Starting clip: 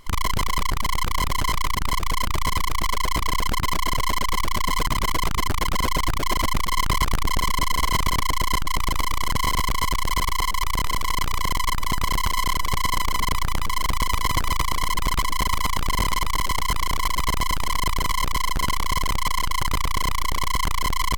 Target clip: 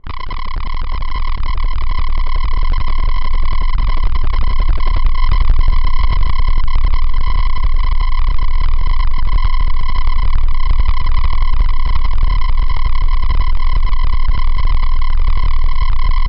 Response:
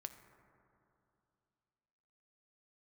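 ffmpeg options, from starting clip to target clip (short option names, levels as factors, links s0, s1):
-af "adynamicsmooth=sensitivity=2.5:basefreq=660,asubboost=boost=5:cutoff=95,atempo=1.3" -ar 12000 -c:a libmp3lame -b:a 56k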